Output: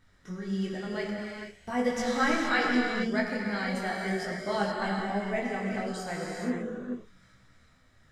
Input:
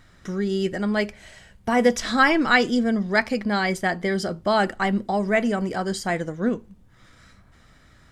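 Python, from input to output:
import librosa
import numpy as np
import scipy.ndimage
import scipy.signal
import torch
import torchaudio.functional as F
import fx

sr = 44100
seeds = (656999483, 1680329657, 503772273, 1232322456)

y = fx.rev_gated(x, sr, seeds[0], gate_ms=490, shape='flat', drr_db=-1.5)
y = fx.detune_double(y, sr, cents=15)
y = y * librosa.db_to_amplitude(-8.0)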